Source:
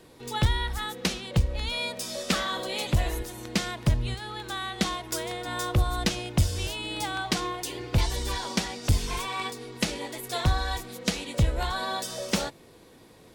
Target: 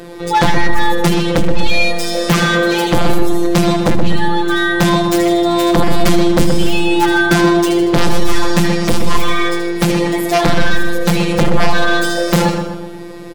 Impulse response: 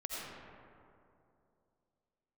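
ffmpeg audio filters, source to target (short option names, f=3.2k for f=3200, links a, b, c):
-filter_complex "[0:a]afftfilt=real='hypot(re,im)*cos(PI*b)':imag='0':win_size=1024:overlap=0.75,highshelf=f=2.3k:g=-9.5,bandreject=f=60:t=h:w=6,bandreject=f=120:t=h:w=6,bandreject=f=180:t=h:w=6,asplit=2[a][b];[b]aecho=0:1:78|156|234|312|390:0.282|0.135|0.0649|0.0312|0.015[c];[a][c]amix=inputs=2:normalize=0,aeval=exprs='0.355*sin(PI/2*7.94*val(0)/0.355)':c=same,asplit=2[d][e];[e]adelay=125,lowpass=f=2.2k:p=1,volume=-6dB,asplit=2[f][g];[g]adelay=125,lowpass=f=2.2k:p=1,volume=0.53,asplit=2[h][i];[i]adelay=125,lowpass=f=2.2k:p=1,volume=0.53,asplit=2[j][k];[k]adelay=125,lowpass=f=2.2k:p=1,volume=0.53,asplit=2[l][m];[m]adelay=125,lowpass=f=2.2k:p=1,volume=0.53,asplit=2[n][o];[o]adelay=125,lowpass=f=2.2k:p=1,volume=0.53,asplit=2[p][q];[q]adelay=125,lowpass=f=2.2k:p=1,volume=0.53[r];[f][h][j][l][n][p][r]amix=inputs=7:normalize=0[s];[d][s]amix=inputs=2:normalize=0,volume=2.5dB"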